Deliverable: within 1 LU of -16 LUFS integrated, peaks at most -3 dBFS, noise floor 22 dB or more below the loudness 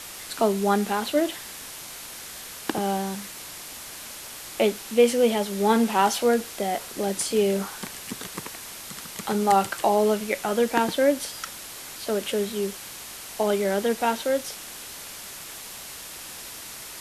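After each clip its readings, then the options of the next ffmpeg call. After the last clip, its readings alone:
noise floor -40 dBFS; noise floor target -47 dBFS; loudness -25.0 LUFS; peak level -6.5 dBFS; loudness target -16.0 LUFS
-> -af "afftdn=nr=7:nf=-40"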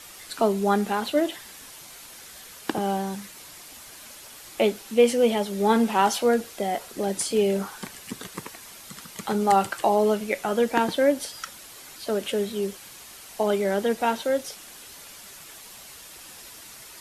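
noise floor -45 dBFS; noise floor target -47 dBFS
-> -af "afftdn=nr=6:nf=-45"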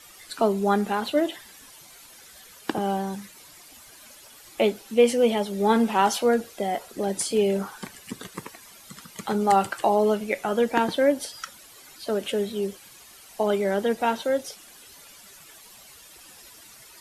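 noise floor -49 dBFS; loudness -24.5 LUFS; peak level -6.5 dBFS; loudness target -16.0 LUFS
-> -af "volume=2.66,alimiter=limit=0.708:level=0:latency=1"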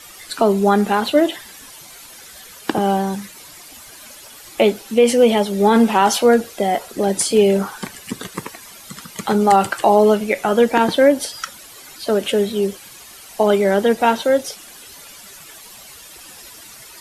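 loudness -16.5 LUFS; peak level -3.0 dBFS; noise floor -41 dBFS

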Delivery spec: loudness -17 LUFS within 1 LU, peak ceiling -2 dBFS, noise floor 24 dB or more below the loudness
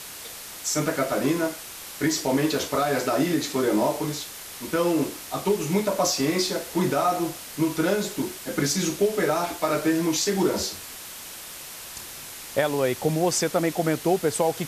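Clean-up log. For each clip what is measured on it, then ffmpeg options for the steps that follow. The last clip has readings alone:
noise floor -40 dBFS; noise floor target -49 dBFS; loudness -24.5 LUFS; peak level -8.5 dBFS; loudness target -17.0 LUFS
-> -af "afftdn=nr=9:nf=-40"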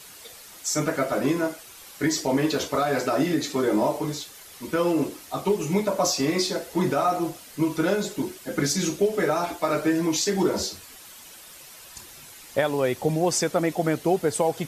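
noise floor -46 dBFS; noise floor target -49 dBFS
-> -af "afftdn=nr=6:nf=-46"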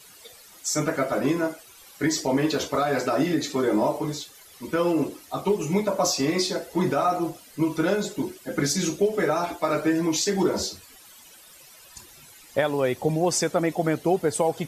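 noise floor -50 dBFS; loudness -25.0 LUFS; peak level -9.0 dBFS; loudness target -17.0 LUFS
-> -af "volume=2.51,alimiter=limit=0.794:level=0:latency=1"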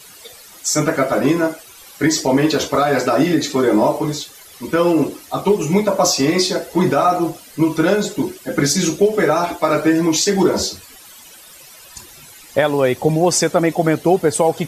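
loudness -17.0 LUFS; peak level -2.0 dBFS; noise floor -42 dBFS

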